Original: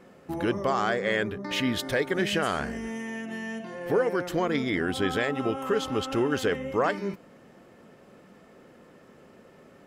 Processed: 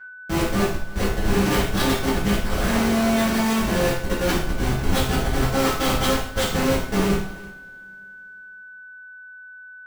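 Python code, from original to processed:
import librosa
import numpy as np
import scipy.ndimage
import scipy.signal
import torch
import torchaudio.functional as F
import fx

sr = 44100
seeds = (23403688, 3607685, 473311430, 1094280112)

y = fx.notch(x, sr, hz=2600.0, q=6.4)
y = fx.dynamic_eq(y, sr, hz=2100.0, q=0.84, threshold_db=-41.0, ratio=4.0, max_db=3)
y = fx.over_compress(y, sr, threshold_db=-32.0, ratio=-0.5)
y = 10.0 ** (-22.5 / 20.0) * np.tanh(y / 10.0 ** (-22.5 / 20.0))
y = fx.tremolo_shape(y, sr, shape='saw_down', hz=6.0, depth_pct=40)
y = fx.schmitt(y, sr, flips_db=-33.5)
y = y + 10.0 ** (-54.0 / 20.0) * np.sin(2.0 * np.pi * 1500.0 * np.arange(len(y)) / sr)
y = fx.echo_multitap(y, sr, ms=(53, 77, 337), db=(-11.0, -18.5, -20.0))
y = fx.rev_double_slope(y, sr, seeds[0], early_s=0.52, late_s=2.9, knee_db=-28, drr_db=-9.5)
y = y * librosa.db_to_amplitude(7.0)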